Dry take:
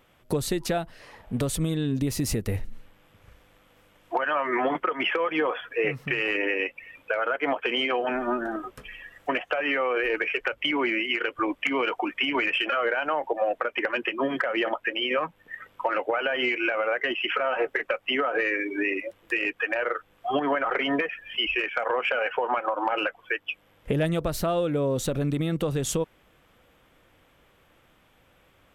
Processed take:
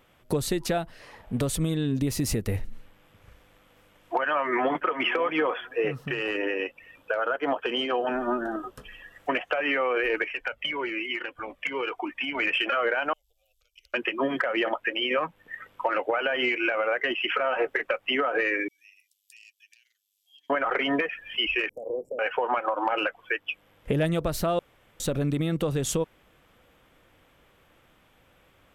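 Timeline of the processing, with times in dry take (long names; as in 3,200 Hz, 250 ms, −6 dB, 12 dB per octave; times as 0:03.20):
0:04.27–0:04.99: delay throw 540 ms, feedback 15%, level −14 dB
0:05.67–0:09.15: parametric band 2,200 Hz −12 dB 0.33 octaves
0:10.24–0:12.40: flanger whose copies keep moving one way falling 1.1 Hz
0:13.13–0:13.94: inverse Chebyshev band-stop filter 150–1,900 Hz, stop band 50 dB
0:18.68–0:20.50: inverse Chebyshev high-pass filter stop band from 1,400 Hz, stop band 60 dB
0:21.69–0:22.19: inverse Chebyshev band-stop filter 1,400–3,300 Hz, stop band 70 dB
0:24.59–0:25.00: fill with room tone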